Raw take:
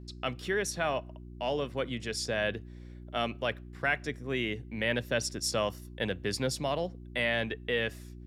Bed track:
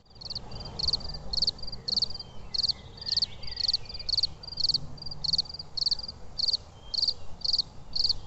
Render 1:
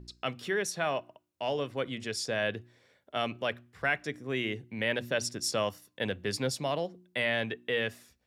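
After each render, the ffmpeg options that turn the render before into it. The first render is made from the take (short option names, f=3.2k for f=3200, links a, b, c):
-af "bandreject=f=60:t=h:w=4,bandreject=f=120:t=h:w=4,bandreject=f=180:t=h:w=4,bandreject=f=240:t=h:w=4,bandreject=f=300:t=h:w=4,bandreject=f=360:t=h:w=4"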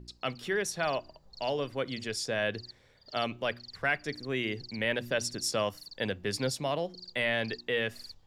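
-filter_complex "[1:a]volume=-21.5dB[a];[0:a][a]amix=inputs=2:normalize=0"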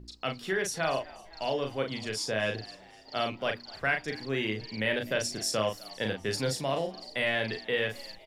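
-filter_complex "[0:a]asplit=2[a][b];[b]adelay=37,volume=-5dB[c];[a][c]amix=inputs=2:normalize=0,asplit=6[d][e][f][g][h][i];[e]adelay=253,afreqshift=80,volume=-21.5dB[j];[f]adelay=506,afreqshift=160,volume=-25.5dB[k];[g]adelay=759,afreqshift=240,volume=-29.5dB[l];[h]adelay=1012,afreqshift=320,volume=-33.5dB[m];[i]adelay=1265,afreqshift=400,volume=-37.6dB[n];[d][j][k][l][m][n]amix=inputs=6:normalize=0"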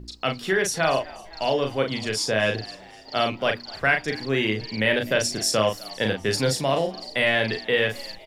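-af "volume=7.5dB"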